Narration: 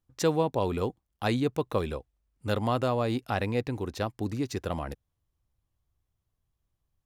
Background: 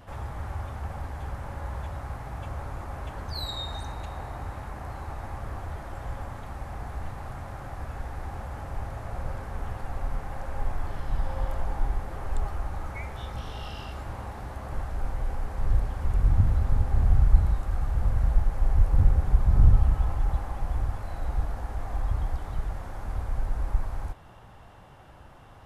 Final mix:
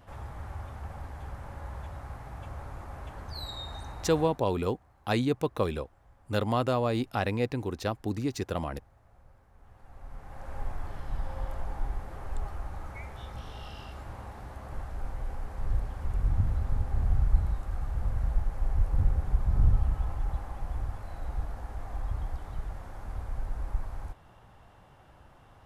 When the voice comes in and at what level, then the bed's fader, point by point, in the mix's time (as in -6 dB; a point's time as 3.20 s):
3.85 s, 0.0 dB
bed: 4.23 s -5.5 dB
4.49 s -25 dB
9.52 s -25 dB
10.52 s -5.5 dB